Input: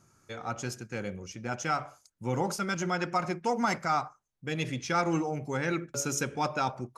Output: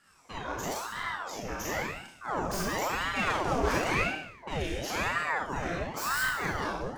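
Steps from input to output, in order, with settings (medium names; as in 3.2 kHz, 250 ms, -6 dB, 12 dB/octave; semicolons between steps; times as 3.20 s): tracing distortion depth 0.1 ms; peak limiter -26 dBFS, peak gain reduction 9 dB; 3.15–3.99 s: waveshaping leveller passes 2; Schroeder reverb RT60 0.81 s, combs from 25 ms, DRR -5.5 dB; ring modulator with a swept carrier 860 Hz, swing 80%, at 0.96 Hz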